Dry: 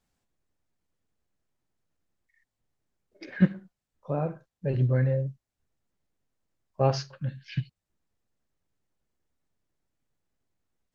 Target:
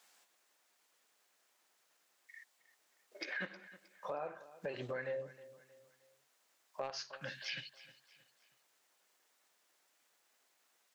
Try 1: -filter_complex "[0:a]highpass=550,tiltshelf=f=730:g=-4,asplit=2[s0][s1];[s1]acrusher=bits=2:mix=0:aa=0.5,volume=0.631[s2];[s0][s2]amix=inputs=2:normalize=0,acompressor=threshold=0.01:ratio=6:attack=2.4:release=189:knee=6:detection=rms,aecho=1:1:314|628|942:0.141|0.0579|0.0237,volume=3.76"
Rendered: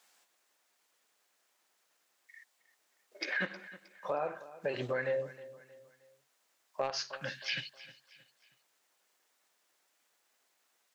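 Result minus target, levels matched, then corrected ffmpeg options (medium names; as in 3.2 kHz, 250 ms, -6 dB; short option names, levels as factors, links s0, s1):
compression: peak gain reduction -7 dB
-filter_complex "[0:a]highpass=550,tiltshelf=f=730:g=-4,asplit=2[s0][s1];[s1]acrusher=bits=2:mix=0:aa=0.5,volume=0.631[s2];[s0][s2]amix=inputs=2:normalize=0,acompressor=threshold=0.00376:ratio=6:attack=2.4:release=189:knee=6:detection=rms,aecho=1:1:314|628|942:0.141|0.0579|0.0237,volume=3.76"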